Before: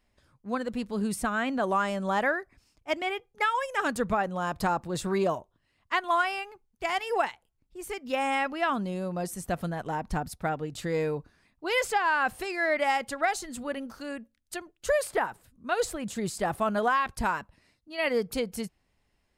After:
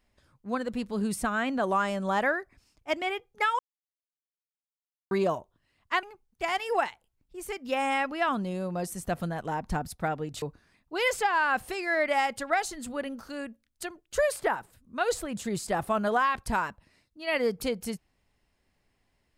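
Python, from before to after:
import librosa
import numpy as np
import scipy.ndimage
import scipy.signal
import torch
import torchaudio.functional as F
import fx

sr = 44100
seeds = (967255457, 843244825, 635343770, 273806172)

y = fx.edit(x, sr, fx.silence(start_s=3.59, length_s=1.52),
    fx.cut(start_s=6.03, length_s=0.41),
    fx.cut(start_s=10.83, length_s=0.3), tone=tone)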